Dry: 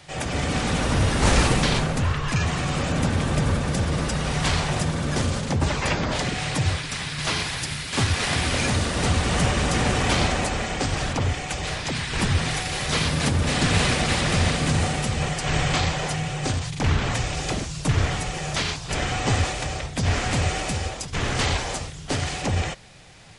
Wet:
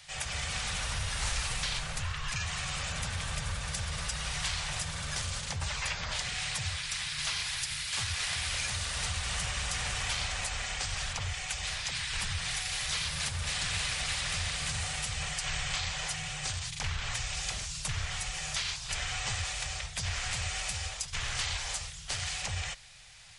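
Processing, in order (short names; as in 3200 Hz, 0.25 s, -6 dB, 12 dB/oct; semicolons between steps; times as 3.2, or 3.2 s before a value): passive tone stack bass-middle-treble 10-0-10; compressor 3:1, threshold -31 dBFS, peak gain reduction 8.5 dB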